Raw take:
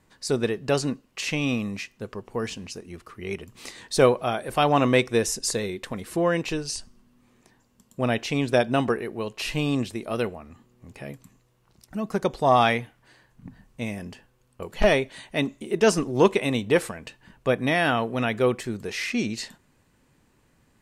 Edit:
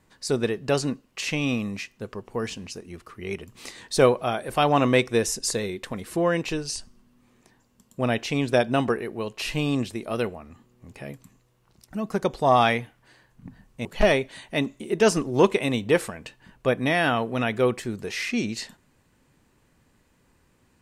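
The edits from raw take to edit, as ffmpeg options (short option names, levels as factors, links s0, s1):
-filter_complex "[0:a]asplit=2[s0][s1];[s0]atrim=end=13.852[s2];[s1]atrim=start=14.658[s3];[s2][s3]acrossfade=d=0.004:c1=hsin:c2=hsin"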